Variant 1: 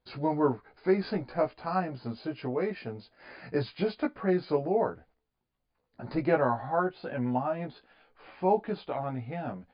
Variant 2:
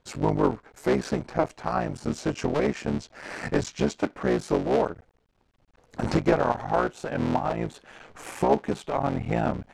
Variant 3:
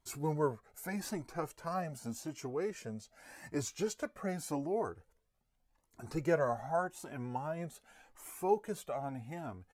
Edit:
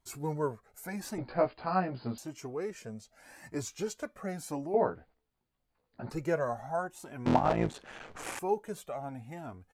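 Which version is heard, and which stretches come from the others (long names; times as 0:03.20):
3
0:01.18–0:02.18: punch in from 1
0:04.74–0:06.10: punch in from 1
0:07.26–0:08.39: punch in from 2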